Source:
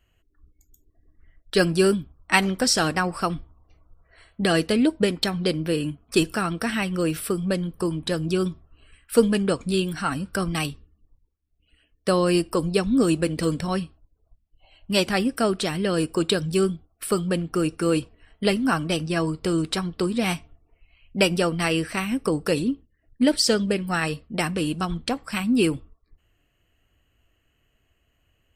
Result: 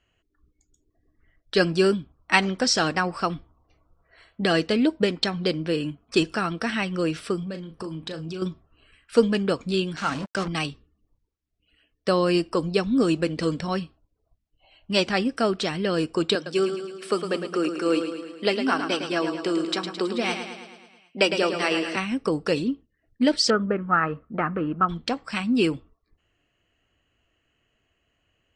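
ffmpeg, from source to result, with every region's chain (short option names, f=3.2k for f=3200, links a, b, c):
-filter_complex "[0:a]asettb=1/sr,asplit=3[a][b][c];[a]atrim=end=7.434[d];[b]atrim=start=7.43:end=8.42,asetpts=PTS-STARTPTS,afade=t=in:d=0.004:c=qsin,afade=t=out:st=0.986:d=0.004:c=qsin,acompressor=threshold=-29dB:ratio=6:attack=3.2:release=140:knee=1:detection=peak,asplit=2[e][f];[f]adelay=37,volume=-9.5dB[g];[e][g]amix=inputs=2:normalize=0,atrim=end_sample=43659[h];[c]atrim=start=8.416[i];[d][h]acrossfade=d=0.004:c1=hsin:c2=qsin[j];[j][i]acrossfade=d=0.004:c1=qsin:c2=hsin,asettb=1/sr,asplit=3[k][l][m];[k]atrim=end=9.964[n];[l]atrim=start=9.96:end=10.48,asetpts=PTS-STARTPTS,afade=t=in:d=0.004:c=qsin,afade=t=out:st=0.516:d=0.004:c=qsin,bandreject=f=60:t=h:w=6,bandreject=f=120:t=h:w=6,bandreject=f=180:t=h:w=6,bandreject=f=240:t=h:w=6,bandreject=f=300:t=h:w=6,bandreject=f=360:t=h:w=6,bandreject=f=420:t=h:w=6,bandreject=f=480:t=h:w=6,acrusher=bits=4:mix=0:aa=0.5[o];[m]atrim=start=10.476[p];[n][o]acrossfade=d=0.004:c1=hsin:c2=qsin[q];[q][p]acrossfade=d=0.004:c1=qsin:c2=hsin,asettb=1/sr,asplit=3[r][s][t];[r]atrim=end=16.354[u];[s]atrim=start=16.35:end=21.96,asetpts=PTS-STARTPTS,afade=t=in:d=0.004:c=qsin,afade=t=out:st=5.606:d=0.004:c=qsin,highpass=f=230:w=0.5412,highpass=f=230:w=1.3066,aecho=1:1:108|216|324|432|540|648|756:0.398|0.235|0.139|0.0818|0.0482|0.0285|0.0168,atrim=end_sample=247401[v];[t]atrim=start=21.956[w];[u][v]acrossfade=d=0.004:c1=hsin:c2=qsin[x];[x][w]acrossfade=d=0.004:c1=qsin:c2=hsin,asettb=1/sr,asplit=3[y][z][aa];[y]atrim=end=23.504[ab];[z]atrim=start=23.5:end=24.89,asetpts=PTS-STARTPTS,afade=t=in:d=0.004:c=qsin,afade=t=out:st=1.386:d=0.004:c=qsin,lowpass=f=1.8k:w=0.5412,lowpass=f=1.8k:w=1.3066,equalizer=f=1.3k:w=4.8:g=12.5[ac];[aa]atrim=start=24.886[ad];[ab][ac]acrossfade=d=0.004:c1=hsin:c2=qsin[ae];[ae][ad]acrossfade=d=0.004:c1=qsin:c2=hsin,lowpass=f=6.8k:w=0.5412,lowpass=f=6.8k:w=1.3066,lowshelf=f=97:g=-11"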